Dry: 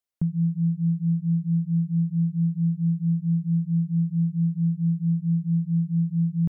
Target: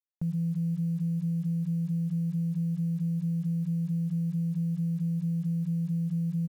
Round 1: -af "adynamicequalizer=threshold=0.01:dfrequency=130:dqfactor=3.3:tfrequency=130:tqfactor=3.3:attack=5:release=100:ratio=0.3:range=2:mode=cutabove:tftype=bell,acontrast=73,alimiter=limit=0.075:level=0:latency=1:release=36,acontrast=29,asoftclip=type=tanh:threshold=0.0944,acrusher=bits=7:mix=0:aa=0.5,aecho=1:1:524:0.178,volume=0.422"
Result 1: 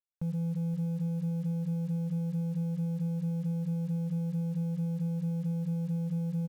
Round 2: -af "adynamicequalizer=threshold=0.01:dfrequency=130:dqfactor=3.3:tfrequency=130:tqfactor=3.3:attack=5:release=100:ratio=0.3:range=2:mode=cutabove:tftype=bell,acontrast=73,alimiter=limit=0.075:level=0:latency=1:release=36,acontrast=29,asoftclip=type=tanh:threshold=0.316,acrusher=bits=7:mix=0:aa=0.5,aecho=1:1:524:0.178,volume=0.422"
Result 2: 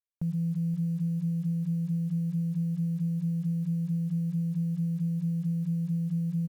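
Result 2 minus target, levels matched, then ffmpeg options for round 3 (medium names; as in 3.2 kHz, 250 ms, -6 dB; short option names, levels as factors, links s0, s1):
echo-to-direct +7.5 dB
-af "adynamicequalizer=threshold=0.01:dfrequency=130:dqfactor=3.3:tfrequency=130:tqfactor=3.3:attack=5:release=100:ratio=0.3:range=2:mode=cutabove:tftype=bell,acontrast=73,alimiter=limit=0.075:level=0:latency=1:release=36,acontrast=29,asoftclip=type=tanh:threshold=0.316,acrusher=bits=7:mix=0:aa=0.5,aecho=1:1:524:0.075,volume=0.422"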